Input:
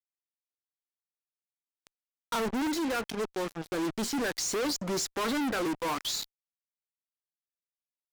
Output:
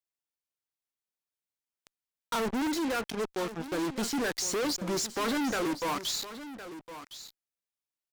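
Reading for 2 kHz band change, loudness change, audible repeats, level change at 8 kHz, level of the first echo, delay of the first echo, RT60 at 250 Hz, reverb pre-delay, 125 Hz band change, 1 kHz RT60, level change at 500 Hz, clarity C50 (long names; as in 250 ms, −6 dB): 0.0 dB, 0.0 dB, 1, 0.0 dB, −13.0 dB, 1,061 ms, no reverb audible, no reverb audible, 0.0 dB, no reverb audible, 0.0 dB, no reverb audible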